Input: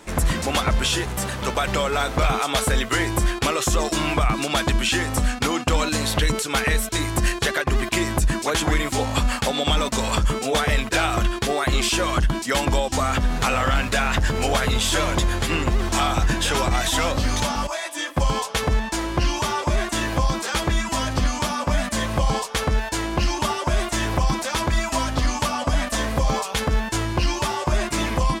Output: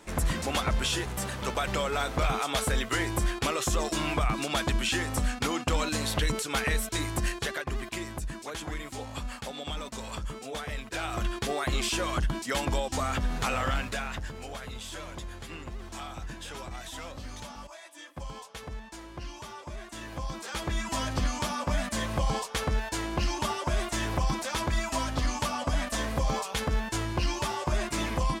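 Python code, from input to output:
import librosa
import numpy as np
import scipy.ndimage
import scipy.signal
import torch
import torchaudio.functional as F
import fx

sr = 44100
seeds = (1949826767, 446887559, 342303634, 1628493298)

y = fx.gain(x, sr, db=fx.line((7.02, -7.0), (8.25, -15.5), (10.84, -15.5), (11.31, -8.0), (13.7, -8.0), (14.43, -19.0), (19.82, -19.0), (20.95, -7.0)))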